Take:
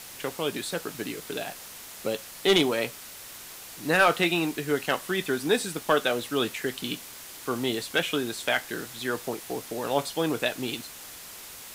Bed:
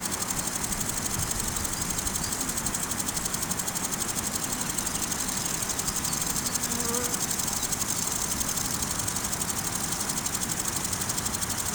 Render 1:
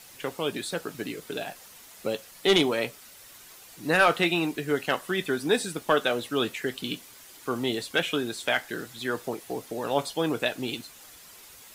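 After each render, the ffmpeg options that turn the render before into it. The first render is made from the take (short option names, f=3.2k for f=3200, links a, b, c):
-af "afftdn=nr=8:nf=-44"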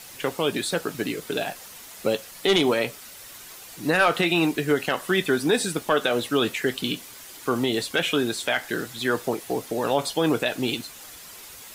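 -af "alimiter=limit=-17dB:level=0:latency=1:release=75,acontrast=58"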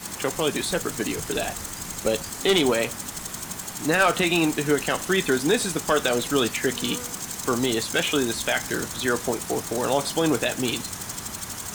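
-filter_complex "[1:a]volume=-5dB[a];[0:a][a]amix=inputs=2:normalize=0"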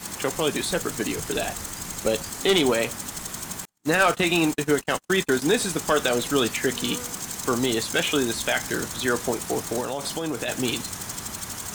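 -filter_complex "[0:a]asettb=1/sr,asplit=3[a][b][c];[a]atrim=end=3.654[d];[b]atrim=start=3.65:end=5.42,asetpts=PTS-STARTPTS,afade=t=in:d=0.004:c=qsin,afade=t=out:st=1.766:d=0.004:c=qsin,agate=range=-44dB:threshold=-28dB:ratio=16:release=100:detection=peak[e];[c]atrim=start=5.416[f];[d][e]acrossfade=d=0.004:c1=hsin:c2=qsin[g];[g][f]acrossfade=d=0.004:c1=qsin:c2=hsin,asettb=1/sr,asplit=3[h][i][j];[h]atrim=end=9.804[k];[i]atrim=start=9.8:end=10.48,asetpts=PTS-STARTPTS,afade=t=in:d=0.004:c=qsin,afade=t=out:st=0.676:d=0.004:c=qsin,acompressor=threshold=-24dB:ratio=6:attack=3.2:release=140:knee=1:detection=peak[l];[j]atrim=start=10.476[m];[k][l]acrossfade=d=0.004:c1=hsin:c2=qsin[n];[n][m]acrossfade=d=0.004:c1=qsin:c2=hsin"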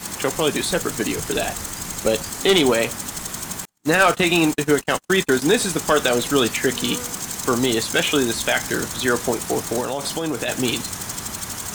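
-af "volume=4dB"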